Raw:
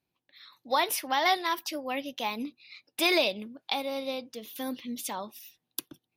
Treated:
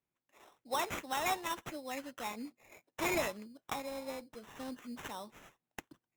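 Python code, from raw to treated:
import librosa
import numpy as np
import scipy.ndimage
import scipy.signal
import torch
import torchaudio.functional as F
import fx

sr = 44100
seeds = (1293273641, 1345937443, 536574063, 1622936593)

y = fx.sample_hold(x, sr, seeds[0], rate_hz=4600.0, jitter_pct=0)
y = F.gain(torch.from_numpy(y), -8.5).numpy()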